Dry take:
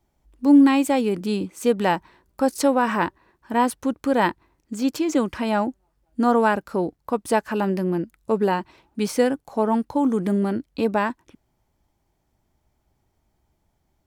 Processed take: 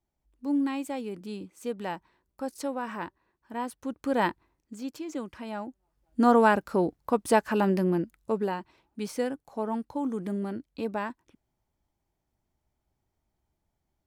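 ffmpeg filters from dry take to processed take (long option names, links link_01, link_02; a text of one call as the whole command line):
ffmpeg -i in.wav -af "volume=7dB,afade=type=in:start_time=3.75:duration=0.46:silence=0.398107,afade=type=out:start_time=4.21:duration=0.66:silence=0.375837,afade=type=in:start_time=5.67:duration=0.57:silence=0.237137,afade=type=out:start_time=7.83:duration=0.71:silence=0.375837" out.wav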